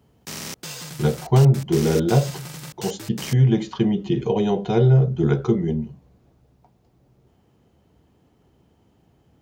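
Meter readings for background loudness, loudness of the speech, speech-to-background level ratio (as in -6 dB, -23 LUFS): -34.5 LUFS, -20.5 LUFS, 14.0 dB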